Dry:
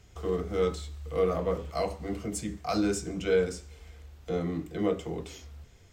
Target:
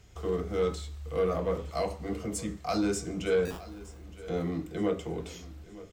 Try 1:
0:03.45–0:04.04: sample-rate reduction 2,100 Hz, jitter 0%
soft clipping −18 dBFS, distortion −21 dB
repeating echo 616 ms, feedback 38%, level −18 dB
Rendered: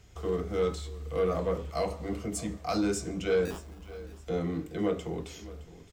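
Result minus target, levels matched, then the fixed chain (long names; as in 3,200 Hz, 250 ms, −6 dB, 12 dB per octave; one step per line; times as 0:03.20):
echo 300 ms early
0:03.45–0:04.04: sample-rate reduction 2,100 Hz, jitter 0%
soft clipping −18 dBFS, distortion −21 dB
repeating echo 916 ms, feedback 38%, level −18 dB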